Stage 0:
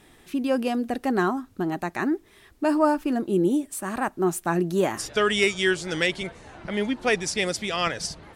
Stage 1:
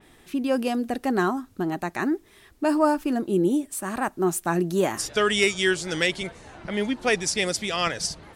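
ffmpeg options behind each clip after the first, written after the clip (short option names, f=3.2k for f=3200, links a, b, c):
-af "adynamicequalizer=threshold=0.0141:dfrequency=4100:dqfactor=0.7:tfrequency=4100:tqfactor=0.7:attack=5:release=100:ratio=0.375:range=2:mode=boostabove:tftype=highshelf"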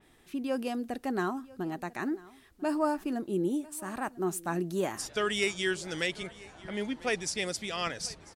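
-af "aecho=1:1:995:0.0841,volume=-8dB"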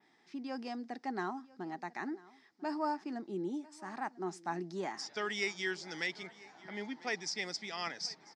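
-af "highpass=f=170:w=0.5412,highpass=f=170:w=1.3066,equalizer=f=530:t=q:w=4:g=-6,equalizer=f=840:t=q:w=4:g=8,equalizer=f=2k:t=q:w=4:g=7,equalizer=f=2.8k:t=q:w=4:g=-5,equalizer=f=5.1k:t=q:w=4:g=10,lowpass=f=6.4k:w=0.5412,lowpass=f=6.4k:w=1.3066,volume=-7.5dB"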